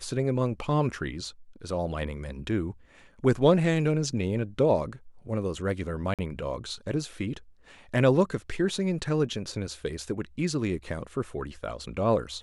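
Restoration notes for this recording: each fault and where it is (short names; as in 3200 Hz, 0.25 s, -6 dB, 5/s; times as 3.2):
6.14–6.19 gap 47 ms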